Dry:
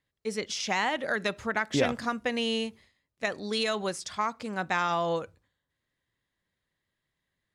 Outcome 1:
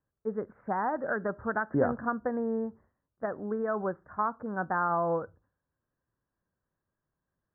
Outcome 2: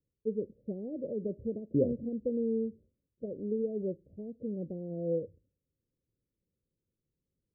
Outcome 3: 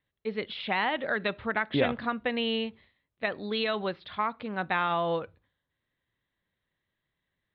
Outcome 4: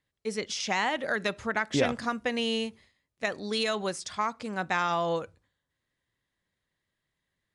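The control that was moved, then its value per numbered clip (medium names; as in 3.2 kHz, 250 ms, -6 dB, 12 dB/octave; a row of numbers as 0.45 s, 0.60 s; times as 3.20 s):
steep low-pass, frequency: 1.6 kHz, 540 Hz, 4 kHz, 11 kHz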